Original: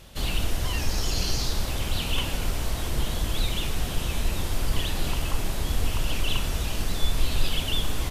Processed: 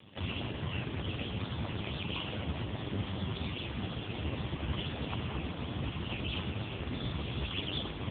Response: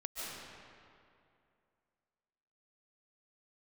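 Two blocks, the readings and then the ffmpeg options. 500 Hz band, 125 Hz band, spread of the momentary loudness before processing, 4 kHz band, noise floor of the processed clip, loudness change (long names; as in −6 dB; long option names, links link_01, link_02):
−5.5 dB, −5.5 dB, 3 LU, −9.5 dB, −42 dBFS, −8.0 dB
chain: -af "aeval=exprs='val(0)*sin(2*PI*50*n/s)':channel_layout=same,volume=2dB" -ar 8000 -c:a libopencore_amrnb -b:a 4750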